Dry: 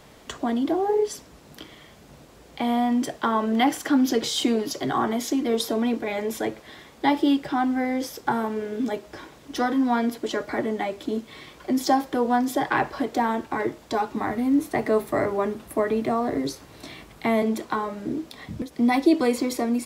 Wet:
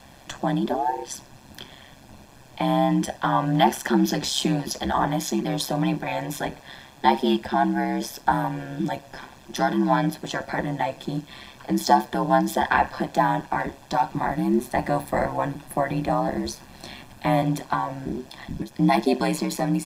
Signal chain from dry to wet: comb 1.2 ms, depth 80%; ring modulator 67 Hz; gain +2.5 dB

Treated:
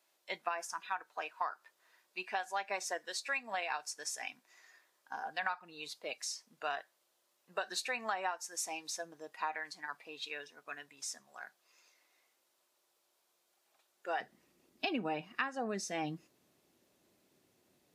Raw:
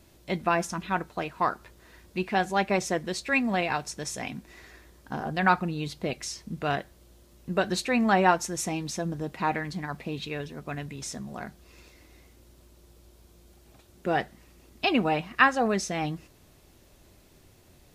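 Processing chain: spectral noise reduction 9 dB; Chebyshev high-pass 830 Hz, order 2, from 14.2 s 220 Hz; compressor 12:1, threshold -29 dBFS, peak gain reduction 15.5 dB; gain -3 dB

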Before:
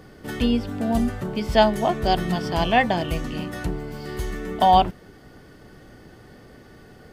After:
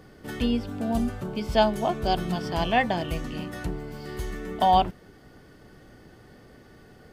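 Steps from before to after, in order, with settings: 0.64–2.41 notch 1900 Hz, Q 7.4; gain -4 dB

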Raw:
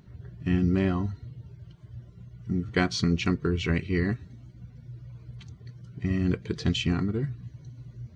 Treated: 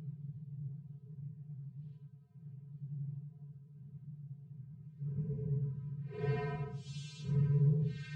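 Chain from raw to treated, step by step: vocoder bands 8, square 142 Hz; Paulstretch 4.1×, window 0.10 s, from 1.25; gain -7.5 dB

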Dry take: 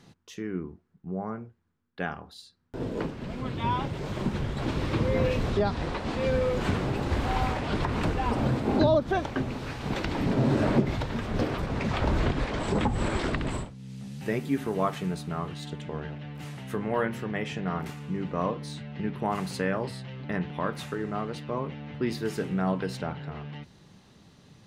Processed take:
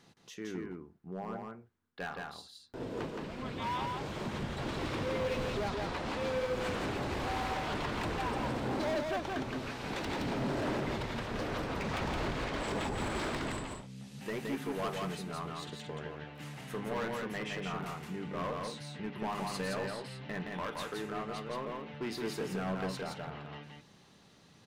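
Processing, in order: low shelf 250 Hz -9 dB; overloaded stage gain 29 dB; echo 0.169 s -3 dB; gain -3.5 dB

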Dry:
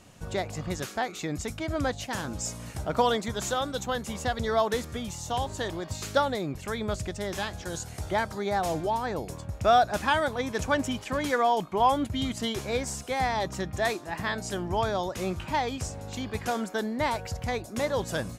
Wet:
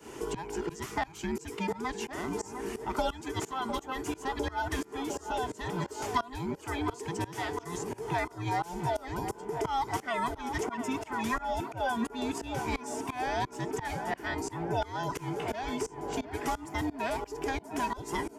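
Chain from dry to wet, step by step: band inversion scrambler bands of 500 Hz; HPF 42 Hz; bell 4000 Hz -7.5 dB 0.3 oct; tape echo 0.703 s, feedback 85%, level -11.5 dB, low-pass 1800 Hz; tremolo saw up 2.9 Hz, depth 95%; three-band squash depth 70%

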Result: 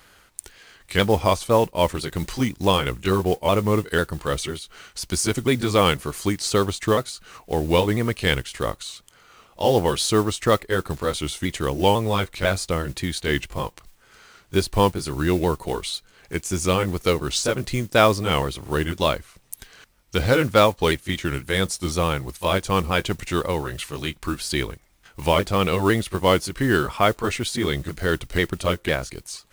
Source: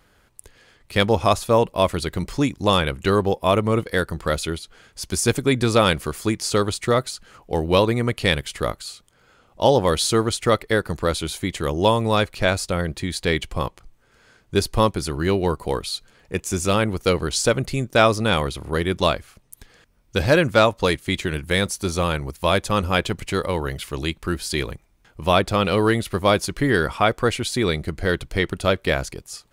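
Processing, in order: repeated pitch sweeps -2 st, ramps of 0.498 s; modulation noise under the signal 23 dB; mismatched tape noise reduction encoder only

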